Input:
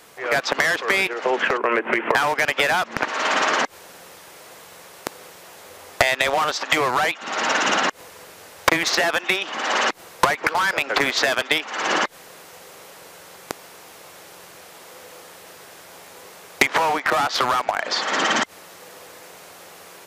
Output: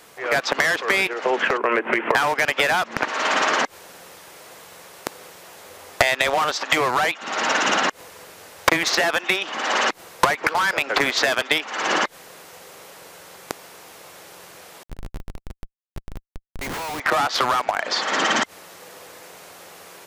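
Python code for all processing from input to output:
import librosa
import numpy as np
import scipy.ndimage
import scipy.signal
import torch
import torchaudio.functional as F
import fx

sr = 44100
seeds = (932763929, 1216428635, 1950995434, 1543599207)

y = fx.chain(x, sr, fx.lowpass(hz=3800.0, slope=24),
    fx.schmitt(flips_db=-35.0),
    fx.upward_expand(threshold_db=-40.0, expansion=2.5), at=(14.83, 17.0))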